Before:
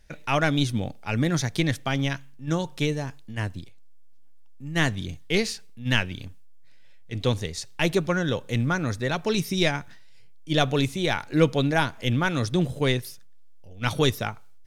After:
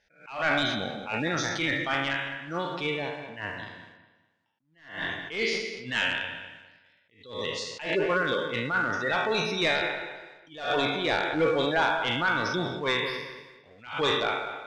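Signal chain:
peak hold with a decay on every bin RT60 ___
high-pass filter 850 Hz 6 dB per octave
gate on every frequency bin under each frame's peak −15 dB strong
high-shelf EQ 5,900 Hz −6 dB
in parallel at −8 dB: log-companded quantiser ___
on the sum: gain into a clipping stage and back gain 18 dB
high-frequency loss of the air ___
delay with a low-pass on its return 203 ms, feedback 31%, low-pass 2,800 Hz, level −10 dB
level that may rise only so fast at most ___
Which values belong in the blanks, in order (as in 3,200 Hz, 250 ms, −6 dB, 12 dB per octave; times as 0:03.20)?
0.99 s, 4 bits, 110 metres, 120 dB per second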